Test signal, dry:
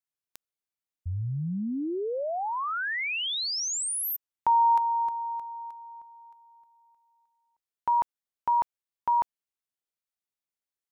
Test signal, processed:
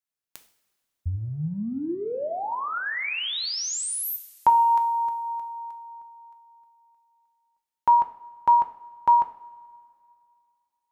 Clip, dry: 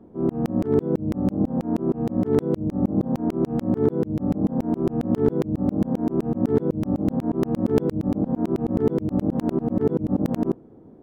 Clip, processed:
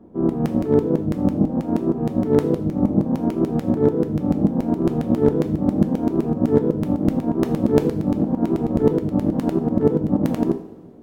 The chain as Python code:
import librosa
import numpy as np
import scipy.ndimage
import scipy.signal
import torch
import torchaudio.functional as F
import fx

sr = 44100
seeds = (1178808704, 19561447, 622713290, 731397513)

y = fx.transient(x, sr, attack_db=6, sustain_db=2)
y = fx.rev_double_slope(y, sr, seeds[0], early_s=0.52, late_s=2.5, knee_db=-18, drr_db=6.0)